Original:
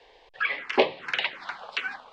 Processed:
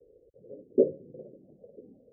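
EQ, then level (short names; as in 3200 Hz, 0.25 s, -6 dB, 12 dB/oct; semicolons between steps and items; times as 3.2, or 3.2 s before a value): HPF 74 Hz 12 dB/oct; steep low-pass 540 Hz 72 dB/oct; low shelf 320 Hz +6 dB; 0.0 dB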